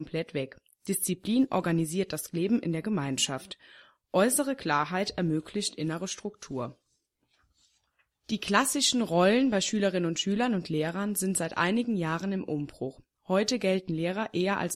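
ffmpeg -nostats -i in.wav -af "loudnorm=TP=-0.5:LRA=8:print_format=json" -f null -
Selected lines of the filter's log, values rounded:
"input_i" : "-28.8",
"input_tp" : "-8.8",
"input_lra" : "3.8",
"input_thresh" : "-39.3",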